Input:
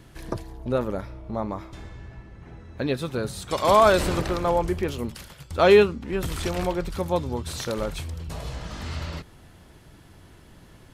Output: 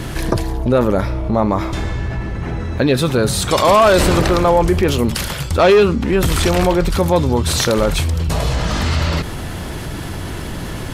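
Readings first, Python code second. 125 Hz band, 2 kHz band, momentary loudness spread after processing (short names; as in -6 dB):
+14.0 dB, +9.0 dB, 15 LU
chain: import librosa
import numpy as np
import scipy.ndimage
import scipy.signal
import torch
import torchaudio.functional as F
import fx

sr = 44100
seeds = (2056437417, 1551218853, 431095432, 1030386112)

p1 = fx.fold_sine(x, sr, drive_db=8, ceiling_db=-5.5)
p2 = x + F.gain(torch.from_numpy(p1), -12.0).numpy()
p3 = fx.env_flatten(p2, sr, amount_pct=50)
y = F.gain(torch.from_numpy(p3), 1.0).numpy()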